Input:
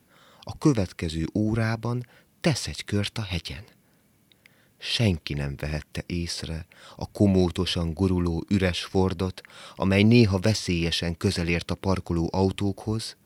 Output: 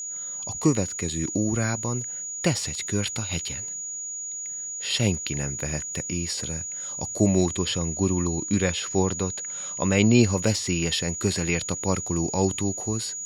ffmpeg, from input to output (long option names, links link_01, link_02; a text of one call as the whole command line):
ffmpeg -i in.wav -filter_complex "[0:a]lowshelf=frequency=66:gain=-5.5,agate=range=-33dB:threshold=-58dB:ratio=3:detection=peak,asettb=1/sr,asplit=3[link_01][link_02][link_03];[link_01]atrim=end=7.504[link_04];[link_02]atrim=start=7.5:end=10.2,asetpts=PTS-STARTPTS,afade=type=in:duration=0.004:curve=qsin,afade=type=out:start_time=2.696:duration=0.004:curve=qsin,highshelf=frequency=9000:gain=-9.5[link_05];[link_03]atrim=start=10.196[link_06];[link_04][link_05]acrossfade=duration=0.004:curve1=hsin:curve2=qsin[link_07];[link_07][link_06]acrossfade=duration=0.004:curve1=qsin:curve2=hsin,aeval=exprs='val(0)+0.0282*sin(2*PI*6800*n/s)':channel_layout=same" out.wav